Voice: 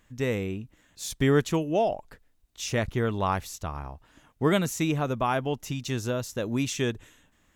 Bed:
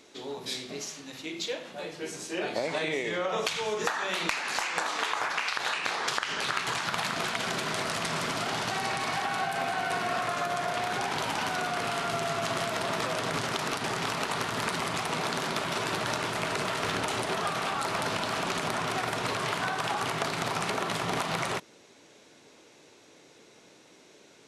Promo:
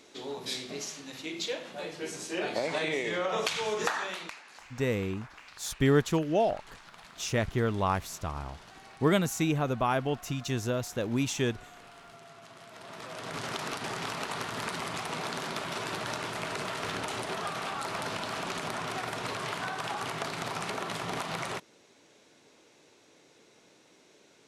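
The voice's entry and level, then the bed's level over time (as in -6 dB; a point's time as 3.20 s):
4.60 s, -1.5 dB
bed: 3.97 s -0.5 dB
4.49 s -21 dB
12.58 s -21 dB
13.48 s -4.5 dB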